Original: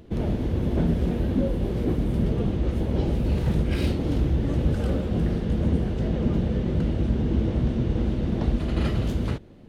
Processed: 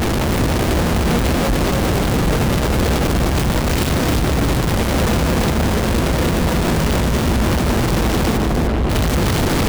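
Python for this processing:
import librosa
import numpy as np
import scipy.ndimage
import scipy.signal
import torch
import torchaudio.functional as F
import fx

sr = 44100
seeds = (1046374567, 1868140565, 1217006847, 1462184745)

y = np.sign(x) * np.sqrt(np.mean(np.square(x)))
y = fx.lowpass(y, sr, hz=1200.0, slope=6, at=(8.36, 8.89), fade=0.02)
y = y + 10.0 ** (-5.0 / 20.0) * np.pad(y, (int(301 * sr / 1000.0), 0))[:len(y)]
y = y * 10.0 ** (6.0 / 20.0)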